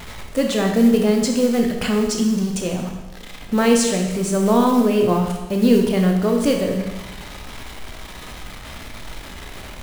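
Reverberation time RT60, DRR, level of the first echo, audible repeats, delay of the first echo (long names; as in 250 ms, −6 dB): 1.1 s, 2.0 dB, no echo audible, no echo audible, no echo audible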